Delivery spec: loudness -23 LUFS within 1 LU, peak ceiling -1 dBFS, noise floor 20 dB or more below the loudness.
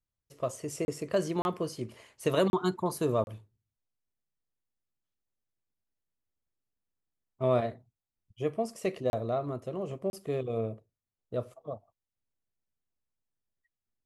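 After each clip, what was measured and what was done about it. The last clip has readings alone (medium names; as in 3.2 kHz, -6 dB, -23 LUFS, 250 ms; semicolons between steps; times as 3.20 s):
dropouts 6; longest dropout 31 ms; loudness -32.5 LUFS; peak level -14.5 dBFS; loudness target -23.0 LUFS
-> interpolate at 0.85/1.42/2.50/3.24/9.10/10.10 s, 31 ms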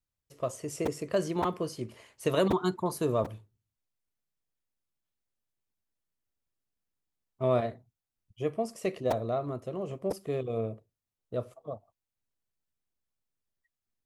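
dropouts 0; loudness -32.5 LUFS; peak level -14.5 dBFS; loudness target -23.0 LUFS
-> trim +9.5 dB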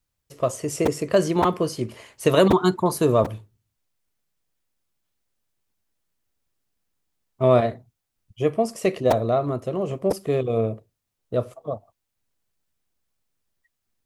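loudness -23.0 LUFS; peak level -5.0 dBFS; noise floor -80 dBFS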